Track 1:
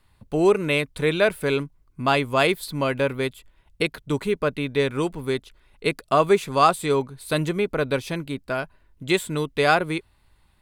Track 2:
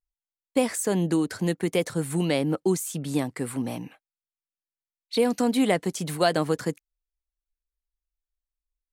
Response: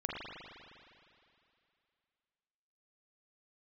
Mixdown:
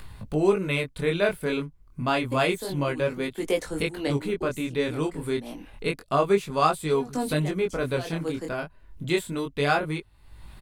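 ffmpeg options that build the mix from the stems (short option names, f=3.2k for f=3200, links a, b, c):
-filter_complex "[0:a]acompressor=mode=upward:threshold=-26dB:ratio=2.5,volume=-2dB,asplit=2[a][b];[1:a]highpass=f=230:w=0.5412,highpass=f=230:w=1.3066,adelay=1750,volume=1.5dB[c];[b]apad=whole_len=470889[d];[c][d]sidechaincompress=threshold=-40dB:ratio=6:attack=6.9:release=132[e];[a][e]amix=inputs=2:normalize=0,lowshelf=f=200:g=6,flanger=delay=19:depth=6.9:speed=0.29"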